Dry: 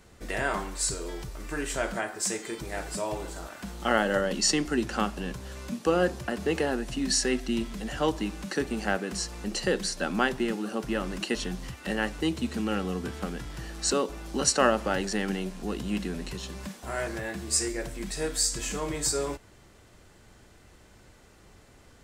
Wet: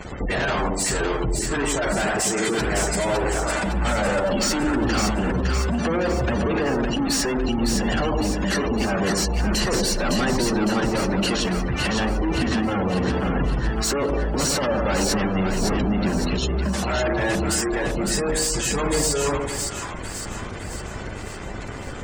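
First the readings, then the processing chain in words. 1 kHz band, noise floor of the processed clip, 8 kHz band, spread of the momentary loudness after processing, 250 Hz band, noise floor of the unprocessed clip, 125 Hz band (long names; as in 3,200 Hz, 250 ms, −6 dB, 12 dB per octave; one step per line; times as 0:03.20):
+7.0 dB, −33 dBFS, +5.0 dB, 6 LU, +8.0 dB, −55 dBFS, +12.0 dB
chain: fuzz pedal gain 48 dB, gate −58 dBFS
gate on every frequency bin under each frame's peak −20 dB strong
echo with a time of its own for lows and highs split 890 Hz, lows 104 ms, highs 559 ms, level −4 dB
level −9 dB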